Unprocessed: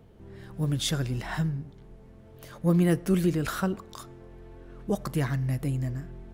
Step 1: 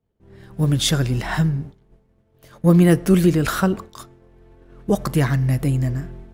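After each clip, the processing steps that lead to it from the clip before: expander -37 dBFS; trim +9 dB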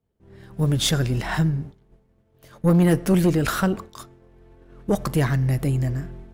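valve stage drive 11 dB, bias 0.4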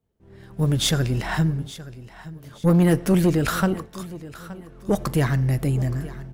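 feedback delay 871 ms, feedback 33%, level -17 dB

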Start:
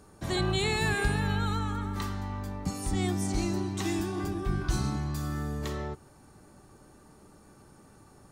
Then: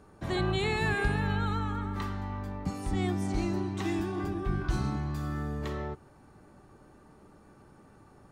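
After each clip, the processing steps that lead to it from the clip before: tone controls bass -1 dB, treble -11 dB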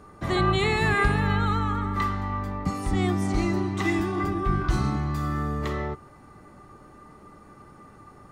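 small resonant body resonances 1.2/2 kHz, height 15 dB, ringing for 90 ms; trim +5.5 dB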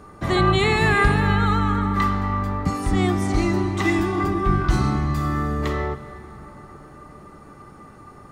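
reverberation RT60 5.4 s, pre-delay 78 ms, DRR 13.5 dB; trim +4.5 dB

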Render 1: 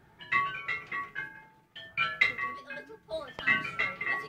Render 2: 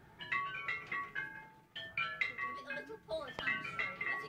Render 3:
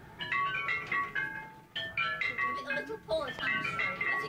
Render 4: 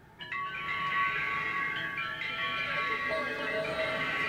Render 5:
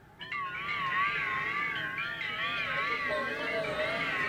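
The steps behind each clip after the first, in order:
compression 2.5:1, threshold -38 dBFS, peak gain reduction 13 dB
peak limiter -31 dBFS, peak gain reduction 10 dB; trim +9 dB
swelling reverb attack 690 ms, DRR -5.5 dB; trim -4.5 dB
wow and flutter 88 cents

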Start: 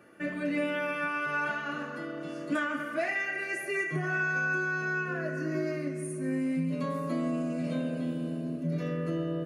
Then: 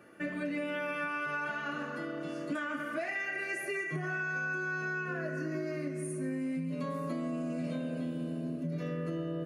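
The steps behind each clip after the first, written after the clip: compression, threshold -32 dBFS, peak gain reduction 7 dB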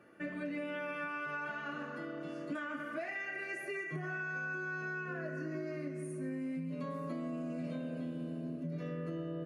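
treble shelf 5.2 kHz -7.5 dB; trim -4 dB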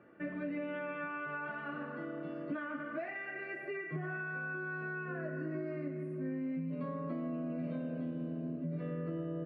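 distance through air 450 m; trim +2 dB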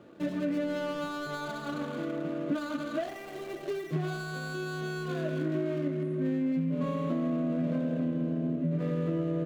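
median filter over 25 samples; trim +8.5 dB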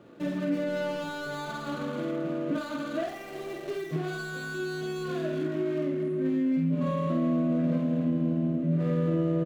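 doubling 49 ms -3 dB

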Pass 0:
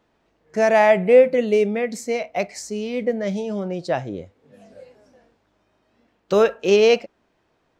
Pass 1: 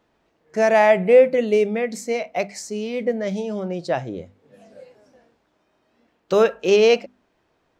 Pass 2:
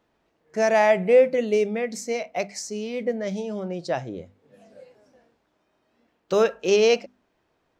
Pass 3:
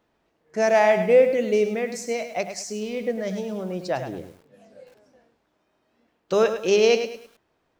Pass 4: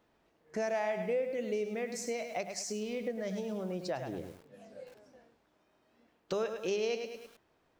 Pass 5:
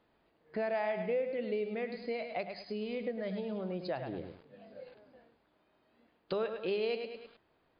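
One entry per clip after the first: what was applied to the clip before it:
hum notches 50/100/150/200/250 Hz
dynamic bell 5.7 kHz, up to +6 dB, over -47 dBFS, Q 2; trim -3.5 dB
bit-crushed delay 104 ms, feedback 35%, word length 8-bit, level -9 dB
compression 3:1, threshold -34 dBFS, peak gain reduction 16.5 dB; trim -1.5 dB
MP3 64 kbps 11.025 kHz

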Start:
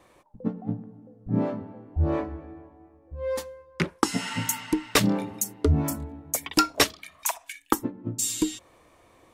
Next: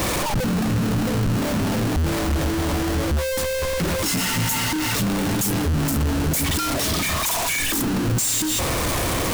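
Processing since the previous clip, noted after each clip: one-bit comparator; tone controls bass +8 dB, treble +3 dB; in parallel at -6 dB: bit crusher 5-bit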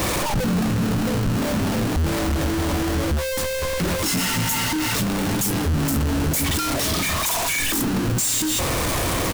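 doubling 22 ms -14 dB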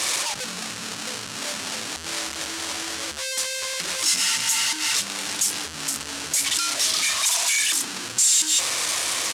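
frequency weighting ITU-R 468; trim -6.5 dB

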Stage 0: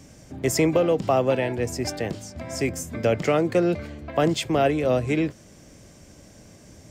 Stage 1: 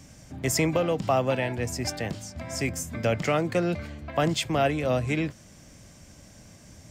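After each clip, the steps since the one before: peaking EQ 400 Hz -7.5 dB 1.1 oct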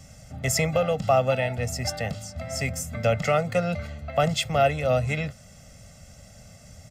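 comb 1.5 ms, depth 98%; trim -1.5 dB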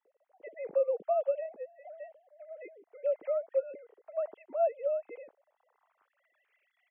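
formants replaced by sine waves; band-pass sweep 460 Hz -> 2.3 kHz, 5.09–6.57 s; trim -4.5 dB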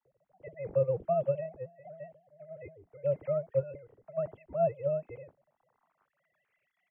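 octave divider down 2 oct, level +3 dB; tape noise reduction on one side only decoder only

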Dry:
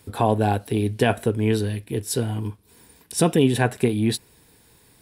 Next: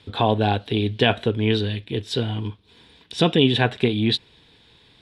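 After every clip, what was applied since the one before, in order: resonant low-pass 3.5 kHz, resonance Q 4.4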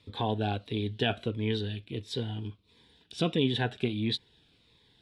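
Shepard-style phaser falling 1.5 Hz; trim -9 dB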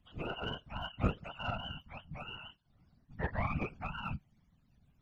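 spectrum inverted on a logarithmic axis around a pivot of 550 Hz; Chebyshev shaper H 3 -16 dB, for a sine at -14 dBFS; whisper effect; trim -3 dB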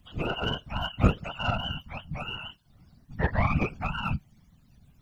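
tone controls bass +2 dB, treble +7 dB; trim +8.5 dB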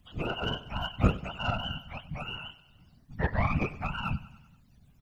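feedback delay 96 ms, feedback 57%, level -17.5 dB; trim -2.5 dB

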